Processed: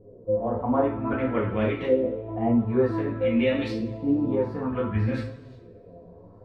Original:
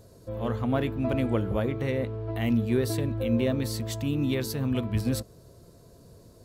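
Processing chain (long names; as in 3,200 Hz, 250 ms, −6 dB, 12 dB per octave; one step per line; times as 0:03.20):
auto-filter low-pass saw up 0.54 Hz 410–3,300 Hz
coupled-rooms reverb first 0.41 s, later 1.9 s, from −22 dB, DRR −5 dB
flanger 0.74 Hz, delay 6.7 ms, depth 5.8 ms, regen +41%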